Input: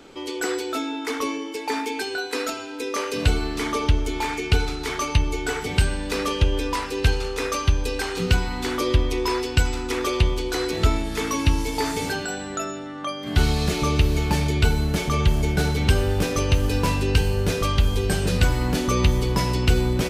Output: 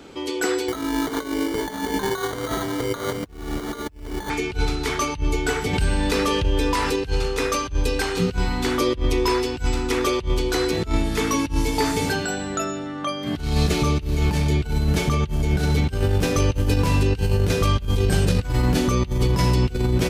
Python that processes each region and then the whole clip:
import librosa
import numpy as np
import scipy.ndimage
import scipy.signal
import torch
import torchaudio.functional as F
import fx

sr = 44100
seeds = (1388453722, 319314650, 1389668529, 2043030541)

y = fx.chain(x, sr, fx.over_compress(threshold_db=-30.0, ratio=-0.5),
    fx.sample_hold(seeds[0], rate_hz=2600.0, jitter_pct=0), at=(0.68, 4.3))
y = fx.chain(y, sr, fx.comb_fb(f0_hz=440.0, decay_s=0.32, harmonics='all', damping=0.0, mix_pct=60),
    fx.env_flatten(amount_pct=70), at=(5.73, 6.96))
y = fx.highpass(y, sr, hz=56.0, slope=6)
y = fx.low_shelf(y, sr, hz=180.0, db=7.5)
y = fx.over_compress(y, sr, threshold_db=-19.0, ratio=-0.5)